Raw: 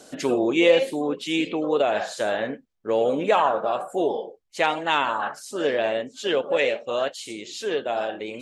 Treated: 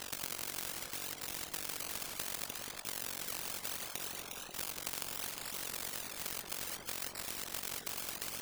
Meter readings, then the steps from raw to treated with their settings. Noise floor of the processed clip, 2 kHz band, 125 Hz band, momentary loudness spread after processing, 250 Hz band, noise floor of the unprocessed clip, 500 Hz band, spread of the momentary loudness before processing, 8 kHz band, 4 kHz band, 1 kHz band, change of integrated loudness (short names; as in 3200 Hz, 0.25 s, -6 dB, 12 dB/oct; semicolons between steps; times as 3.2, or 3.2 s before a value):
-49 dBFS, -16.5 dB, -13.0 dB, 2 LU, -26.5 dB, -55 dBFS, -30.5 dB, 10 LU, +2.5 dB, -10.5 dB, -23.0 dB, -15.0 dB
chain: reverb removal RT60 0.68 s; brick-wall FIR low-pass 5300 Hz; low shelf 250 Hz +9.5 dB; in parallel at +2.5 dB: level quantiser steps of 13 dB; on the sum: transient shaper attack +3 dB, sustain -2 dB; compressor, threshold -26 dBFS, peak gain reduction 21.5 dB; decimation with a swept rate 19×, swing 60% 0.67 Hz; AM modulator 46 Hz, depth 90%; echo with dull and thin repeats by turns 0.179 s, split 960 Hz, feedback 57%, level -9 dB; spectral compressor 10:1